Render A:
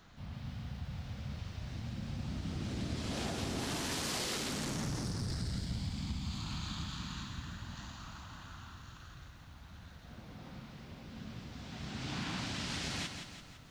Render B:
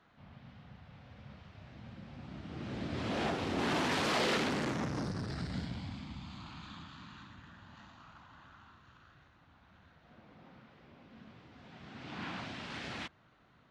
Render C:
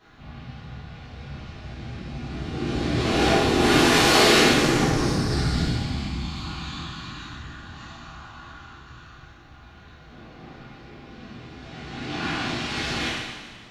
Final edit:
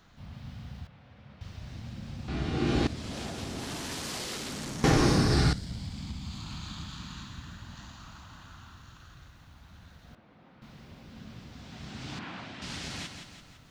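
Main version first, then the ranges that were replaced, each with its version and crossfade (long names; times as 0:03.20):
A
0:00.87–0:01.41: punch in from B
0:02.28–0:02.87: punch in from C
0:04.84–0:05.53: punch in from C
0:10.15–0:10.62: punch in from B
0:12.19–0:12.62: punch in from B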